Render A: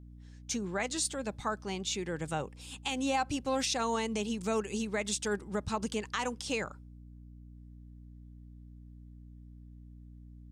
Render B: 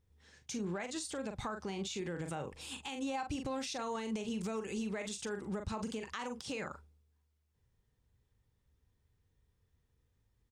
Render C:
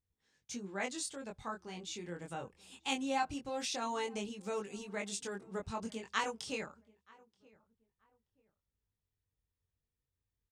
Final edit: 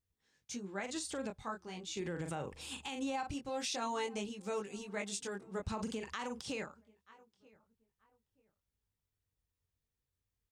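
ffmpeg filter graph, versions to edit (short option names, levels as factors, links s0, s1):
-filter_complex "[1:a]asplit=3[s0][s1][s2];[2:a]asplit=4[s3][s4][s5][s6];[s3]atrim=end=0.802[s7];[s0]atrim=start=0.798:end=1.302[s8];[s4]atrim=start=1.298:end=1.972[s9];[s1]atrim=start=1.968:end=3.312[s10];[s5]atrim=start=3.308:end=5.662[s11];[s2]atrim=start=5.658:end=6.622[s12];[s6]atrim=start=6.618[s13];[s7][s8]acrossfade=d=0.004:c1=hsin:c2=hsin[s14];[s14][s9]acrossfade=d=0.004:c1=hsin:c2=hsin[s15];[s15][s10]acrossfade=d=0.004:c1=hsin:c2=hsin[s16];[s16][s11]acrossfade=d=0.004:c1=hsin:c2=hsin[s17];[s17][s12]acrossfade=d=0.004:c1=hsin:c2=hsin[s18];[s18][s13]acrossfade=d=0.004:c1=hsin:c2=hsin"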